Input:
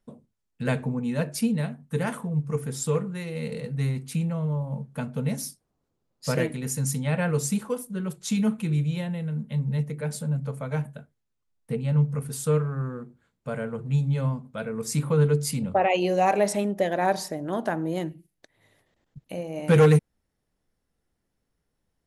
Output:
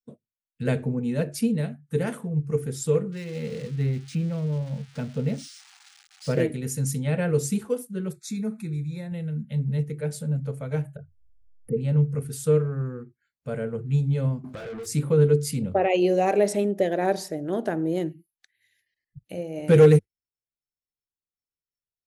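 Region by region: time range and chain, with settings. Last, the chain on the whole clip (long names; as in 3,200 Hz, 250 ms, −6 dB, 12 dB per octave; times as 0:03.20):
0:03.12–0:06.40: spike at every zero crossing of −24.5 dBFS + high-frequency loss of the air 94 metres + linearly interpolated sample-rate reduction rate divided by 3×
0:08.11–0:09.12: downward compressor 1.5 to 1, threshold −36 dBFS + Butterworth band-reject 3,000 Hz, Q 3
0:10.96–0:11.77: spectral envelope exaggerated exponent 2 + upward compression, threshold −31 dBFS
0:14.44–0:14.86: double-tracking delay 24 ms −4 dB + mid-hump overdrive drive 28 dB, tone 2,400 Hz, clips at −20 dBFS + downward compressor 20 to 1, threshold −32 dBFS
whole clip: dynamic equaliser 390 Hz, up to +4 dB, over −33 dBFS, Q 1; noise reduction from a noise print of the clip's start 28 dB; graphic EQ with 15 bands 100 Hz +7 dB, 400 Hz +4 dB, 1,000 Hz −7 dB; level −2 dB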